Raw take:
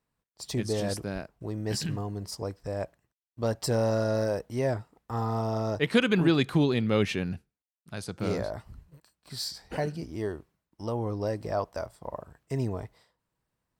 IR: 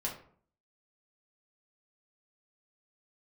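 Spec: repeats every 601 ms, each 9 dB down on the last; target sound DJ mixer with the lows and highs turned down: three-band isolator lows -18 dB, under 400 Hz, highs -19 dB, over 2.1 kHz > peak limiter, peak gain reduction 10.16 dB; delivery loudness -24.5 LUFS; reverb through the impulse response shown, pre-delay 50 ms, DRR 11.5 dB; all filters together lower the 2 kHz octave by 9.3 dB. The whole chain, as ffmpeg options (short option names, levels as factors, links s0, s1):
-filter_complex "[0:a]equalizer=f=2000:t=o:g=-8,aecho=1:1:601|1202|1803|2404:0.355|0.124|0.0435|0.0152,asplit=2[s0][s1];[1:a]atrim=start_sample=2205,adelay=50[s2];[s1][s2]afir=irnorm=-1:irlink=0,volume=0.2[s3];[s0][s3]amix=inputs=2:normalize=0,acrossover=split=400 2100:gain=0.126 1 0.112[s4][s5][s6];[s4][s5][s6]amix=inputs=3:normalize=0,volume=5.31,alimiter=limit=0.224:level=0:latency=1"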